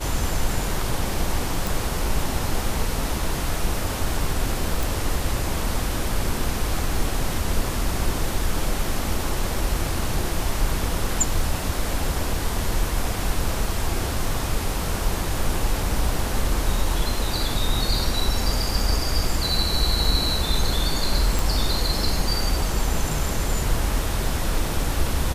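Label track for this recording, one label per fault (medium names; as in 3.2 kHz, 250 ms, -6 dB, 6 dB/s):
1.670000	1.670000	pop
4.830000	4.830000	pop
21.390000	21.390000	pop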